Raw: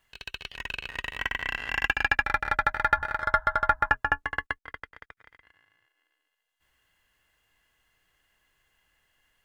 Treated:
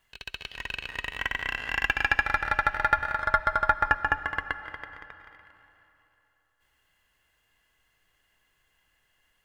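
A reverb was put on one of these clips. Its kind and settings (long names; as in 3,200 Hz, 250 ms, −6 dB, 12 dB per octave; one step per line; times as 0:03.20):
comb and all-pass reverb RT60 3.3 s, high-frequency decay 0.75×, pre-delay 100 ms, DRR 12.5 dB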